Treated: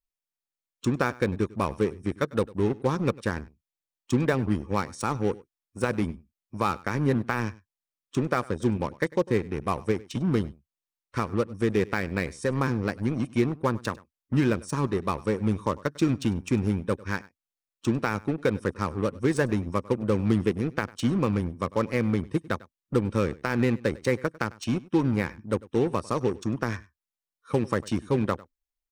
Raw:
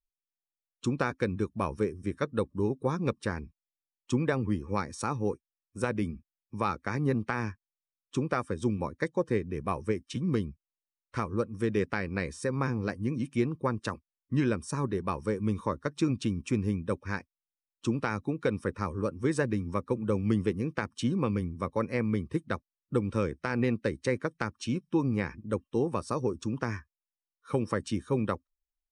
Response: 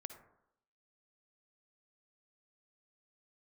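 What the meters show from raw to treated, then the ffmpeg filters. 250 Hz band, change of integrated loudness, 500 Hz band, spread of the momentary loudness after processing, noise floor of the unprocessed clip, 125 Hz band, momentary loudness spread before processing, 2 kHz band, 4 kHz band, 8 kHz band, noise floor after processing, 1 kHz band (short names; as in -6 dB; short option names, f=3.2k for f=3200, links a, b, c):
+4.0 dB, +4.0 dB, +4.0 dB, 6 LU, under -85 dBFS, +3.5 dB, 6 LU, +4.0 dB, +4.5 dB, +3.0 dB, under -85 dBFS, +4.0 dB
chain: -filter_complex "[0:a]asplit=2[a][b];[b]acrusher=bits=4:mix=0:aa=0.5,volume=-5dB[c];[a][c]amix=inputs=2:normalize=0,aecho=1:1:99:0.0841"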